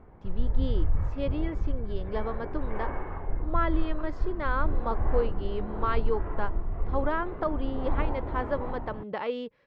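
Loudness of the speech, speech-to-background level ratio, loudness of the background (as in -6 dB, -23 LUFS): -33.5 LUFS, 1.0 dB, -34.5 LUFS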